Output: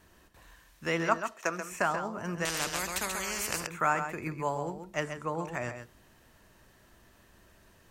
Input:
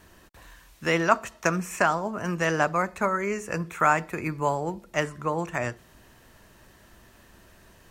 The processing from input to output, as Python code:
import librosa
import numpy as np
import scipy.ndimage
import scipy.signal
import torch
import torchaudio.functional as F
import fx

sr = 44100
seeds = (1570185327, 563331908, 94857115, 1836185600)

y = fx.highpass(x, sr, hz=310.0, slope=12, at=(1.2, 1.72))
y = y + 10.0 ** (-8.5 / 20.0) * np.pad(y, (int(134 * sr / 1000.0), 0))[:len(y)]
y = fx.spectral_comp(y, sr, ratio=4.0, at=(2.45, 3.67))
y = y * 10.0 ** (-6.5 / 20.0)